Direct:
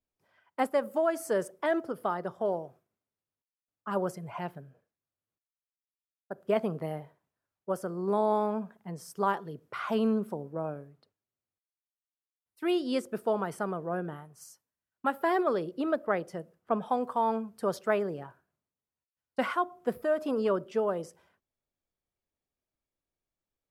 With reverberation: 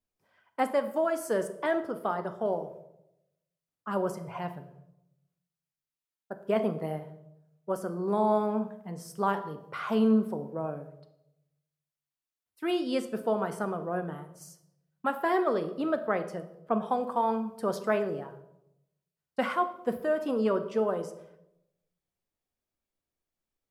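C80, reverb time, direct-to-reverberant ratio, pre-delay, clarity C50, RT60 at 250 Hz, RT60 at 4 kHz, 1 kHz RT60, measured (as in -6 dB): 15.0 dB, 0.85 s, 8.0 dB, 4 ms, 12.5 dB, 1.0 s, 0.60 s, 0.75 s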